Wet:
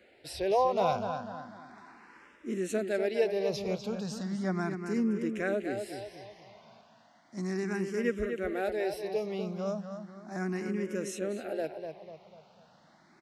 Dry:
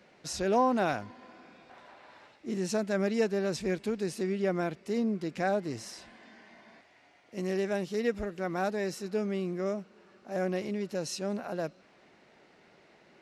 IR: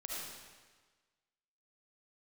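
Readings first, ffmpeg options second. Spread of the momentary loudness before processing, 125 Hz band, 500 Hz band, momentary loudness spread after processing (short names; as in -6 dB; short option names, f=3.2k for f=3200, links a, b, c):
10 LU, -0.5 dB, 0.0 dB, 16 LU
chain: -filter_complex "[0:a]asplit=2[a][b];[b]adelay=247,lowpass=f=4.5k:p=1,volume=-7dB,asplit=2[c][d];[d]adelay=247,lowpass=f=4.5k:p=1,volume=0.44,asplit=2[e][f];[f]adelay=247,lowpass=f=4.5k:p=1,volume=0.44,asplit=2[g][h];[h]adelay=247,lowpass=f=4.5k:p=1,volume=0.44,asplit=2[i][j];[j]adelay=247,lowpass=f=4.5k:p=1,volume=0.44[k];[a][c][e][g][i][k]amix=inputs=6:normalize=0,asplit=2[l][m];[m]afreqshift=0.35[n];[l][n]amix=inputs=2:normalize=1,volume=1.5dB"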